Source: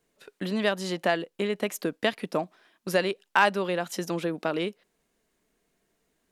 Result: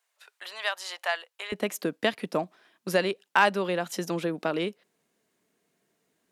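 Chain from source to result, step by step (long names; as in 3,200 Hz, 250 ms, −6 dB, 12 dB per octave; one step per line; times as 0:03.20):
high-pass filter 770 Hz 24 dB per octave, from 0:01.52 92 Hz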